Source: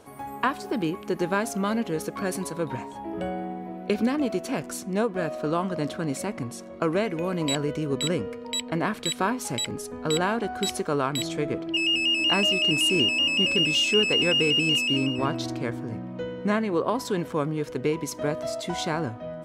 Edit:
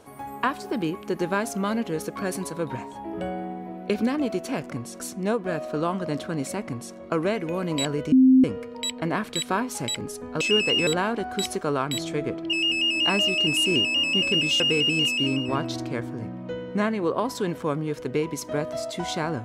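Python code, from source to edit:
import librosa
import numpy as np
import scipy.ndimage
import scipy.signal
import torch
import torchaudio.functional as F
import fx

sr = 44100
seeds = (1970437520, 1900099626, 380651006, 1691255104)

y = fx.edit(x, sr, fx.duplicate(start_s=6.36, length_s=0.3, to_s=4.7),
    fx.bleep(start_s=7.82, length_s=0.32, hz=260.0, db=-11.5),
    fx.move(start_s=13.84, length_s=0.46, to_s=10.11), tone=tone)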